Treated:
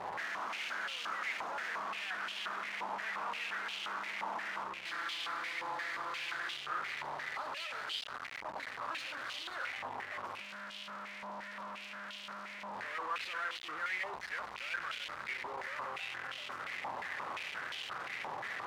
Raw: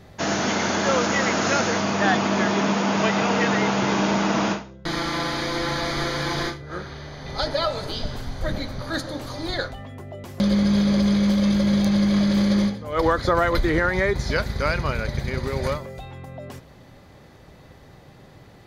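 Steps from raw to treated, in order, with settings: one-bit comparator; step-sequenced band-pass 5.7 Hz 930–3000 Hz; trim -5.5 dB

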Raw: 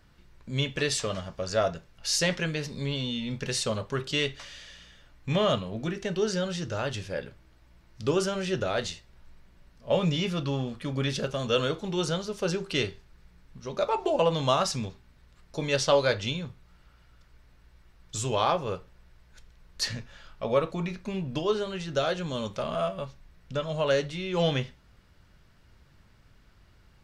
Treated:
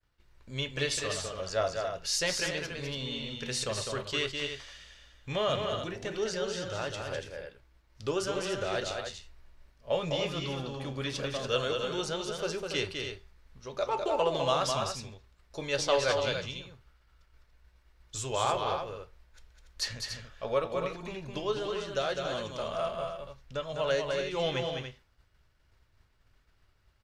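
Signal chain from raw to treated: peaking EQ 190 Hz -9.5 dB 1.1 oct; expander -52 dBFS; loudspeakers at several distances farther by 70 m -5 dB, 98 m -8 dB; trim -3.5 dB

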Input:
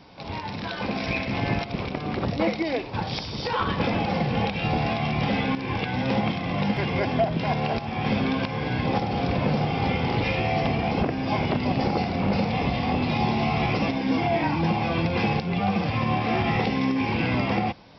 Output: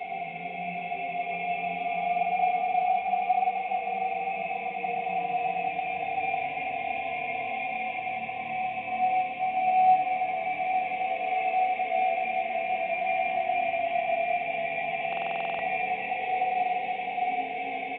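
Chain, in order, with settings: comb 4.2 ms, depth 70%; peak limiter -20 dBFS, peak gain reduction 10.5 dB; two resonant band-passes 1.3 kHz, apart 1.7 oct; Paulstretch 14×, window 0.25 s, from 15.45 s; feedback delay 106 ms, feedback 40%, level -7 dB; simulated room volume 2600 m³, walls furnished, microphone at 3.4 m; buffer glitch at 15.08 s, samples 2048, times 10; trim +1.5 dB; A-law 64 kbps 8 kHz

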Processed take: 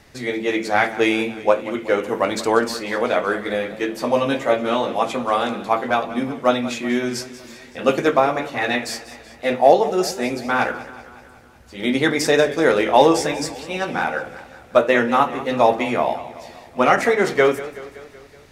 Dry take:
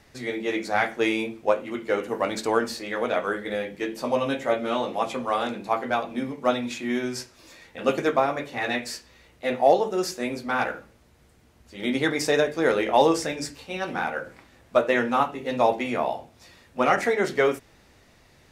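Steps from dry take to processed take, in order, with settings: modulated delay 188 ms, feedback 59%, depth 108 cents, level -16 dB; trim +5.5 dB

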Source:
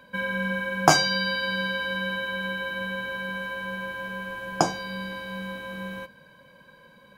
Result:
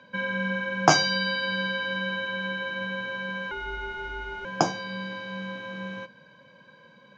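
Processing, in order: Chebyshev band-pass 100–6400 Hz, order 4; 3.51–4.45 s: frequency shift -140 Hz

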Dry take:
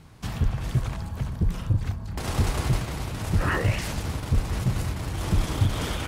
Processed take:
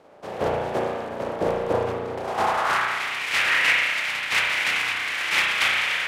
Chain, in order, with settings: spectral contrast reduction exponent 0.39; band-pass sweep 540 Hz -> 2.2 kHz, 2.14–3.01 s; spring tank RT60 1.4 s, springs 34 ms, chirp 75 ms, DRR -2 dB; trim +8 dB

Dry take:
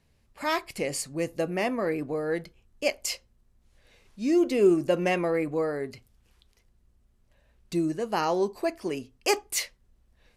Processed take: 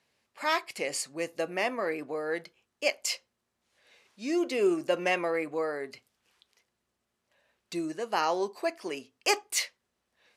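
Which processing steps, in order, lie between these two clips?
frequency weighting A

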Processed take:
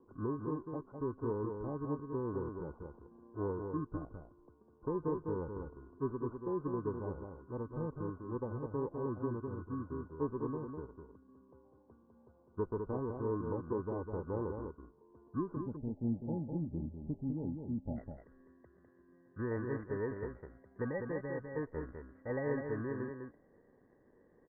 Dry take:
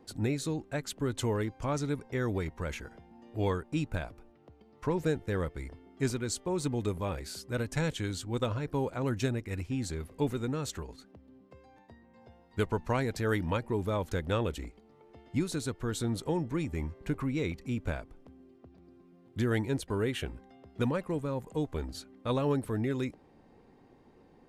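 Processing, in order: bit-reversed sample order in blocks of 32 samples; rippled Chebyshev low-pass 1.5 kHz, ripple 9 dB, from 15.55 s 860 Hz, from 17.96 s 2 kHz; delay 203 ms -5.5 dB; trim -1.5 dB

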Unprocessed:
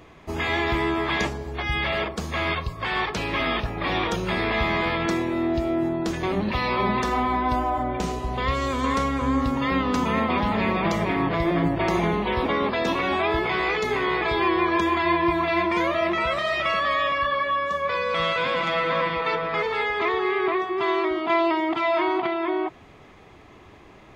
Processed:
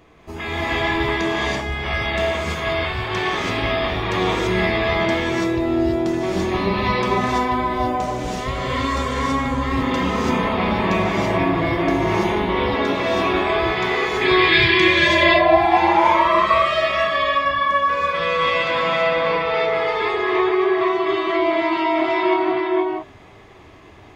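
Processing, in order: 14.87–16.37 s: painted sound rise 540–1200 Hz -21 dBFS; 14.21–15.07 s: graphic EQ 125/250/500/1000/2000/4000/8000 Hz +11/+3/-8/-9/+11/+11/+5 dB; gated-style reverb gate 360 ms rising, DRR -6.5 dB; trim -3.5 dB

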